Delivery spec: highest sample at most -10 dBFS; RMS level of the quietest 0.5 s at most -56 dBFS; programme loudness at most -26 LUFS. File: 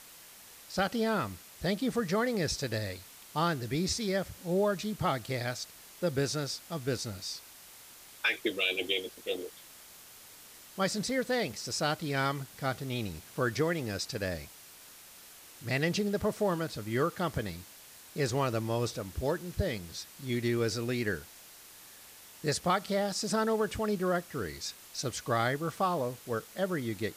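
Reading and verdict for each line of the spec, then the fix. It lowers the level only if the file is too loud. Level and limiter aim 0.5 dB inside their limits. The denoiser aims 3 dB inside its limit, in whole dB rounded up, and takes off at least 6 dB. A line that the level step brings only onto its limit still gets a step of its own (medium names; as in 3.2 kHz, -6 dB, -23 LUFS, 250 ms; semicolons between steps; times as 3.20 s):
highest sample -15.5 dBFS: pass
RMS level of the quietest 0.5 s -53 dBFS: fail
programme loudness -32.5 LUFS: pass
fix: noise reduction 6 dB, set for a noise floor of -53 dBFS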